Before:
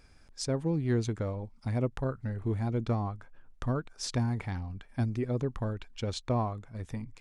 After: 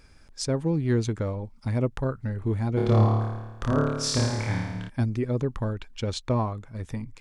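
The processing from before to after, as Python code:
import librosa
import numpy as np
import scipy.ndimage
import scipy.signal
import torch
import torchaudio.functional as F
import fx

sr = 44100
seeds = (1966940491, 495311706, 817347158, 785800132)

y = fx.notch(x, sr, hz=720.0, q=12.0)
y = fx.room_flutter(y, sr, wall_m=4.7, rt60_s=1.1, at=(2.76, 4.88), fade=0.02)
y = F.gain(torch.from_numpy(y), 4.5).numpy()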